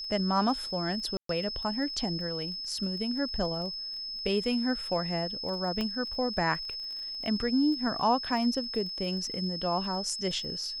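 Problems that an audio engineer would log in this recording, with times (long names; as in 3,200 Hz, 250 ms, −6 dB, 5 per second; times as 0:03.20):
surface crackle 22 per second −38 dBFS
whistle 5,200 Hz −35 dBFS
0:01.17–0:01.29: drop-out 123 ms
0:05.81: click −19 dBFS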